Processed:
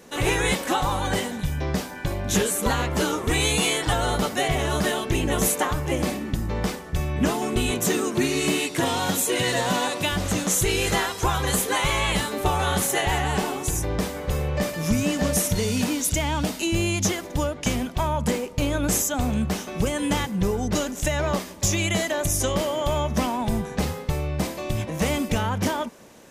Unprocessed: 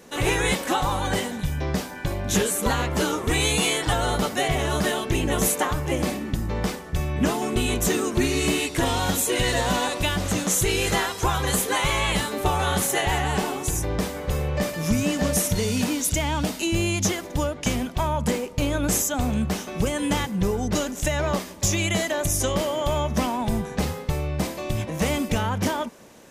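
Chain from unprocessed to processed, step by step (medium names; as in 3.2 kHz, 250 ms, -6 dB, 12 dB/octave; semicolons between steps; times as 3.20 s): 7.71–10.12 s: high-pass 110 Hz 24 dB/octave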